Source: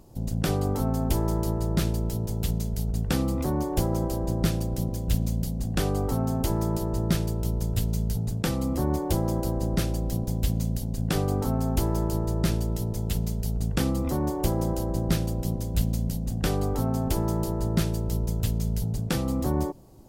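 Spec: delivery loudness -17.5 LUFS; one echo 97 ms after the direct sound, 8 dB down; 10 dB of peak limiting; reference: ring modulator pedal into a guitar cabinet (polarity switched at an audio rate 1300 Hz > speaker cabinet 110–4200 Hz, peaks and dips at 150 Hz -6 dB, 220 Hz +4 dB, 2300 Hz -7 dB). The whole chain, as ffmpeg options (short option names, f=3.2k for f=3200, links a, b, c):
-af "alimiter=limit=-20.5dB:level=0:latency=1,aecho=1:1:97:0.398,aeval=exprs='val(0)*sgn(sin(2*PI*1300*n/s))':c=same,highpass=110,equalizer=f=150:t=q:w=4:g=-6,equalizer=f=220:t=q:w=4:g=4,equalizer=f=2.3k:t=q:w=4:g=-7,lowpass=f=4.2k:w=0.5412,lowpass=f=4.2k:w=1.3066,volume=10.5dB"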